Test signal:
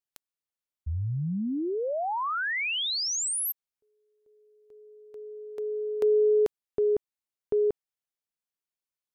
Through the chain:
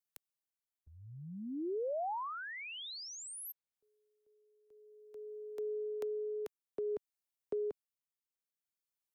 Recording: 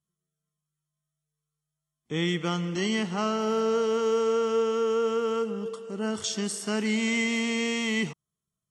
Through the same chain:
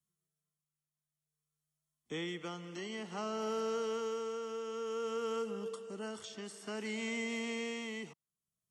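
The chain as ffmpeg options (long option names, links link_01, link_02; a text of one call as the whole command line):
ffmpeg -i in.wav -filter_complex "[0:a]acrossover=split=150|340|850|3300[link_01][link_02][link_03][link_04][link_05];[link_01]acompressor=threshold=-60dB:ratio=4[link_06];[link_02]acompressor=threshold=-40dB:ratio=4[link_07];[link_03]acompressor=threshold=-33dB:ratio=4[link_08];[link_04]acompressor=threshold=-38dB:ratio=4[link_09];[link_05]acompressor=threshold=-49dB:ratio=4[link_10];[link_06][link_07][link_08][link_09][link_10]amix=inputs=5:normalize=0,tremolo=f=0.55:d=0.47,highshelf=frequency=6300:gain=7,volume=-5dB" out.wav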